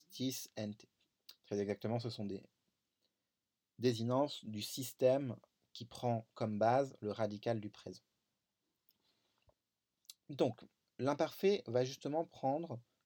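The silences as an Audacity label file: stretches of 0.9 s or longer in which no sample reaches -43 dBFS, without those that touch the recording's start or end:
2.390000	3.810000	silence
7.920000	10.100000	silence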